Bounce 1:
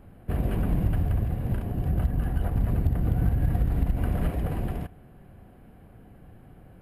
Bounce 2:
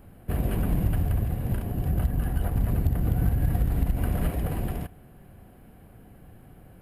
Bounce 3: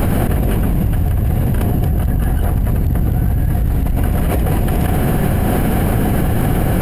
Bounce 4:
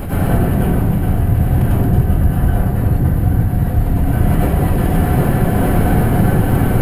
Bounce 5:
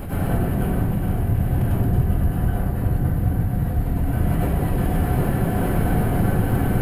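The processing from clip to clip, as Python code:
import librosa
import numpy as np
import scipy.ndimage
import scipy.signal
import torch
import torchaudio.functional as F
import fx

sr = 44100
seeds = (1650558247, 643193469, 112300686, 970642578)

y1 = fx.high_shelf(x, sr, hz=4800.0, db=9.5)
y2 = fx.env_flatten(y1, sr, amount_pct=100)
y2 = y2 * 10.0 ** (4.5 / 20.0)
y3 = y2 + 10.0 ** (-12.0 / 20.0) * np.pad(y2, (int(830 * sr / 1000.0), 0))[:len(y2)]
y3 = fx.rev_plate(y3, sr, seeds[0], rt60_s=1.1, hf_ratio=0.4, predelay_ms=85, drr_db=-9.0)
y3 = y3 * 10.0 ** (-9.0 / 20.0)
y4 = y3 + 10.0 ** (-10.0 / 20.0) * np.pad(y3, (int(479 * sr / 1000.0), 0))[:len(y3)]
y4 = y4 * 10.0 ** (-7.0 / 20.0)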